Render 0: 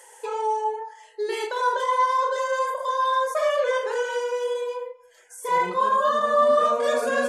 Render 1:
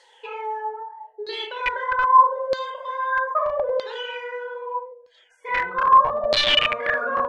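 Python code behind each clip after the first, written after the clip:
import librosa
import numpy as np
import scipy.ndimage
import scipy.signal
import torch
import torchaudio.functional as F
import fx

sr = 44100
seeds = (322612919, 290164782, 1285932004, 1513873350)

y = (np.mod(10.0 ** (14.0 / 20.0) * x + 1.0, 2.0) - 1.0) / 10.0 ** (14.0 / 20.0)
y = fx.hum_notches(y, sr, base_hz=60, count=8)
y = fx.filter_lfo_lowpass(y, sr, shape='saw_down', hz=0.79, low_hz=610.0, high_hz=4300.0, q=8.0)
y = F.gain(torch.from_numpy(y), -6.0).numpy()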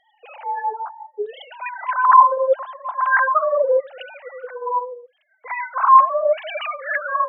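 y = fx.sine_speech(x, sr)
y = F.gain(torch.from_numpy(y), 3.0).numpy()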